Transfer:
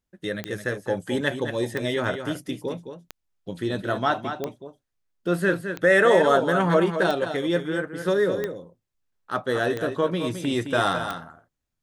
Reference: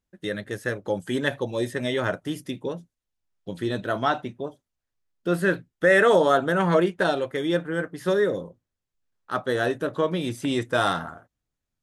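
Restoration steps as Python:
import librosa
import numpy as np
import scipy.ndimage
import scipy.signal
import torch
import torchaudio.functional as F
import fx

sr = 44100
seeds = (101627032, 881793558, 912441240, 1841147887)

y = fx.fix_declick_ar(x, sr, threshold=10.0)
y = fx.fix_echo_inverse(y, sr, delay_ms=215, level_db=-8.5)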